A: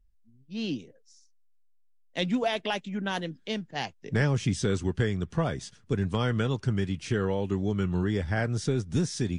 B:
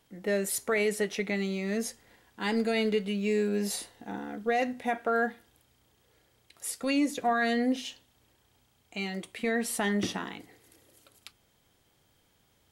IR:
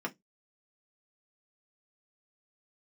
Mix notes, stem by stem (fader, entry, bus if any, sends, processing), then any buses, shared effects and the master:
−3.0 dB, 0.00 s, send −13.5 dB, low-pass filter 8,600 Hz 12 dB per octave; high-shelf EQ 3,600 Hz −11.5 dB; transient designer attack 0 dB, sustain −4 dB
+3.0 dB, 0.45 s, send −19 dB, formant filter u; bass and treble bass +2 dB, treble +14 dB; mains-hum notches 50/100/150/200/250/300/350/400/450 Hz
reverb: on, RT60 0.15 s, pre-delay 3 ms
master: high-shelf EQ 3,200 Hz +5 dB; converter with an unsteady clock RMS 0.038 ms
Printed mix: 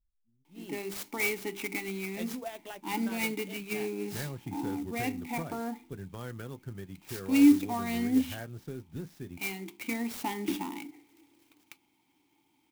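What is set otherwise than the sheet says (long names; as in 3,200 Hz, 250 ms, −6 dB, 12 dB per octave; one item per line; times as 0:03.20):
stem A −3.0 dB → −14.0 dB
stem B +3.0 dB → +9.5 dB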